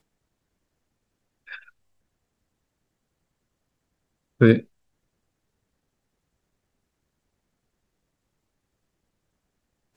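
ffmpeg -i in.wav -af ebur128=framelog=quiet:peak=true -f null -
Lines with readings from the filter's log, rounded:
Integrated loudness:
  I:         -19.5 LUFS
  Threshold: -33.3 LUFS
Loudness range:
  LRA:         0.0 LU
  Threshold: -49.2 LUFS
  LRA low:   -27.3 LUFS
  LRA high:  -27.3 LUFS
True peak:
  Peak:       -2.1 dBFS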